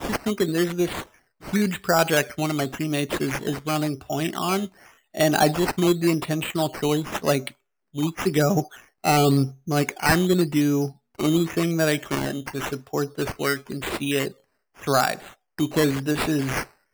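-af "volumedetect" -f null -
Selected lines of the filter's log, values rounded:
mean_volume: -23.9 dB
max_volume: -9.3 dB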